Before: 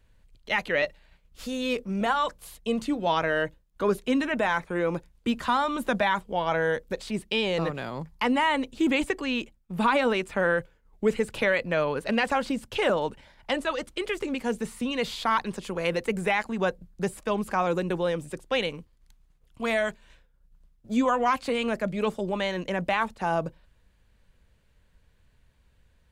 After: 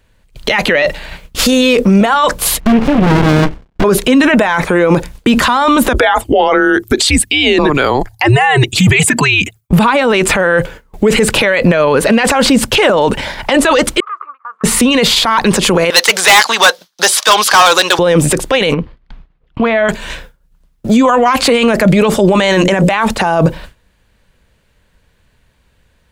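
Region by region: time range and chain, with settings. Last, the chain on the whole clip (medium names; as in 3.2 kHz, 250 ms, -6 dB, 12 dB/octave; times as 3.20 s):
2.60–3.84 s: CVSD coder 16 kbps + sliding maximum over 65 samples
5.93–9.73 s: resonances exaggerated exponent 1.5 + RIAA curve recording + frequency shift -140 Hz
14.00–14.64 s: compression, threshold -33 dBFS + Butterworth band-pass 1.2 kHz, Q 6.4
15.90–17.99 s: Chebyshev high-pass 1.1 kHz + high-order bell 4.4 kHz +11 dB 1.2 oct + overload inside the chain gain 31.5 dB
18.74–19.89 s: compression, threshold -41 dBFS + distance through air 330 m
22.32–22.91 s: peaking EQ 7.7 kHz +8 dB 0.47 oct + hum notches 60/120/180/240/300/360/420/480/540 Hz
whole clip: bass shelf 120 Hz -7 dB; gate with hold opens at -53 dBFS; loudness maximiser +34.5 dB; trim -1 dB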